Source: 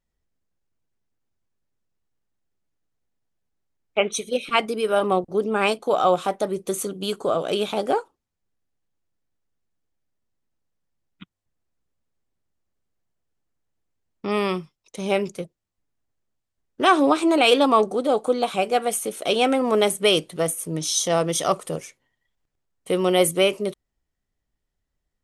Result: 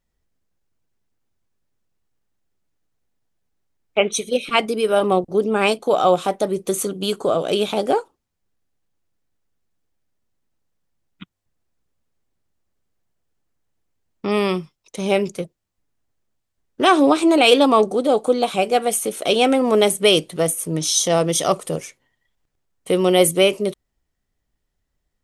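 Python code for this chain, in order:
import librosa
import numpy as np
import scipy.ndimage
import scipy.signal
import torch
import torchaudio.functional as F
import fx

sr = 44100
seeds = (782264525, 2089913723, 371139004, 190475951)

y = fx.dynamic_eq(x, sr, hz=1300.0, q=0.96, threshold_db=-34.0, ratio=4.0, max_db=-4)
y = y * librosa.db_to_amplitude(4.5)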